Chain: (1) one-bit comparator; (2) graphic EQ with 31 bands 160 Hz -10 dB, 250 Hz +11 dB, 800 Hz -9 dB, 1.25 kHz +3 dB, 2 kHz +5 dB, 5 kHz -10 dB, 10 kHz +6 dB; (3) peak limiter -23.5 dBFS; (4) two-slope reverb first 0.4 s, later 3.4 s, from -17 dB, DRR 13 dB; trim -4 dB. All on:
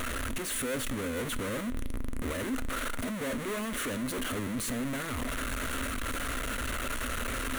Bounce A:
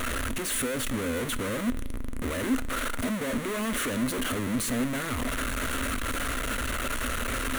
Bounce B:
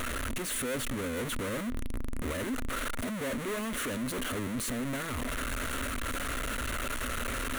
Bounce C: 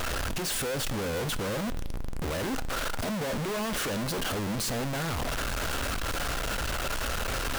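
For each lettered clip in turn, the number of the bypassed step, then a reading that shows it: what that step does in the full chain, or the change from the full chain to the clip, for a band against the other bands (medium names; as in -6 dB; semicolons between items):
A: 3, mean gain reduction 3.5 dB; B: 4, crest factor change -2.5 dB; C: 2, 250 Hz band -4.0 dB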